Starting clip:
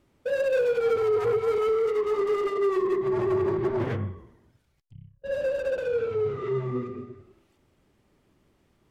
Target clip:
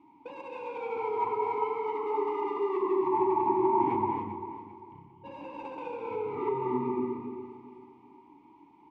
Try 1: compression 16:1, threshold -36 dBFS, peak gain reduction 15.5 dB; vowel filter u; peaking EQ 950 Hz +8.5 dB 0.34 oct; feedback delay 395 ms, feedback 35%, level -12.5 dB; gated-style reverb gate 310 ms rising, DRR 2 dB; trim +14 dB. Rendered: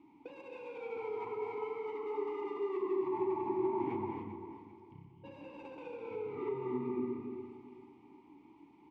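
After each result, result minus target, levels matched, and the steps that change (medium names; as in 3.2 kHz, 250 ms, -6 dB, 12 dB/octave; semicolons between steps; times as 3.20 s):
compression: peak gain reduction +5.5 dB; 1 kHz band -5.5 dB
change: compression 16:1, threshold -30 dBFS, peak gain reduction 9.5 dB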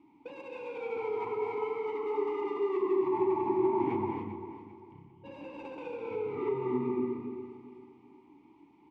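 1 kHz band -5.5 dB
change: peaking EQ 950 Hz +19.5 dB 0.34 oct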